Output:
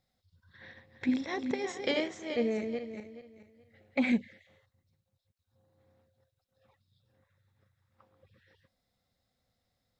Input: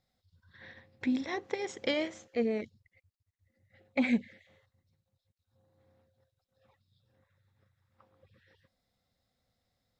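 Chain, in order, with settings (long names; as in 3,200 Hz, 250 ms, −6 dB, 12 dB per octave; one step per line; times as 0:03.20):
0:00.66–0:04.12: feedback delay that plays each chunk backwards 213 ms, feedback 46%, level −6 dB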